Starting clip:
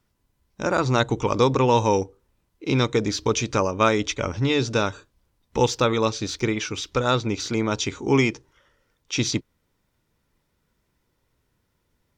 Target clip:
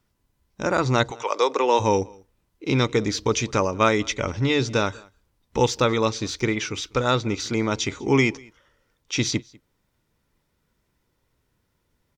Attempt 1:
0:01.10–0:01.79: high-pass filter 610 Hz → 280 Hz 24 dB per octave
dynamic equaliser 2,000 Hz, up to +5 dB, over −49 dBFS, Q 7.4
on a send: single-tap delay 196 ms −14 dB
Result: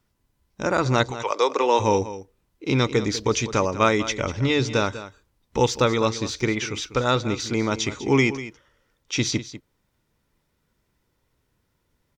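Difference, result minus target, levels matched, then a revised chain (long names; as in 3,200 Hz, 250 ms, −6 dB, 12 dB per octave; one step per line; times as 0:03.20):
echo-to-direct +12 dB
0:01.10–0:01.79: high-pass filter 610 Hz → 280 Hz 24 dB per octave
dynamic equaliser 2,000 Hz, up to +5 dB, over −49 dBFS, Q 7.4
on a send: single-tap delay 196 ms −26 dB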